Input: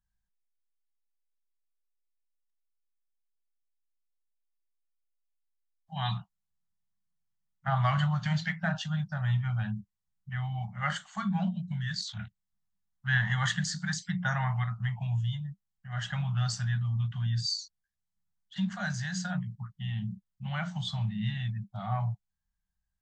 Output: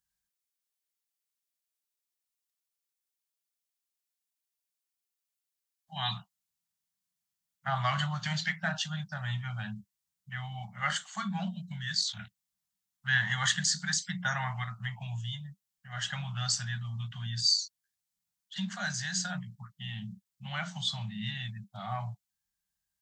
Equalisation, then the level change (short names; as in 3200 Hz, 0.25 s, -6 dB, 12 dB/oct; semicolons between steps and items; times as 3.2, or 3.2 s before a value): HPF 170 Hz 6 dB/oct; high shelf 2500 Hz +11.5 dB; -2.5 dB